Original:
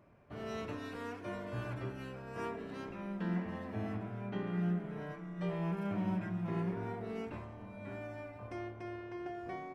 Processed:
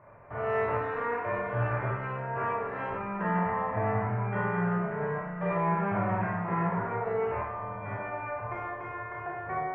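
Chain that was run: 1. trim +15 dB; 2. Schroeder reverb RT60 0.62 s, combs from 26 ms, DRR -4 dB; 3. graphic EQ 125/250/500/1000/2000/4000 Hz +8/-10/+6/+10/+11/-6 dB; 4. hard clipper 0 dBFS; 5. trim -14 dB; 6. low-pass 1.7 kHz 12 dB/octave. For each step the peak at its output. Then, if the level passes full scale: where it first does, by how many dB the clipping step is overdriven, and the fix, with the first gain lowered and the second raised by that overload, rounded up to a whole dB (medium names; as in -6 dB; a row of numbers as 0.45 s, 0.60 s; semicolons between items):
-10.5 dBFS, -6.5 dBFS, -1.5 dBFS, -1.5 dBFS, -15.5 dBFS, -16.0 dBFS; nothing clips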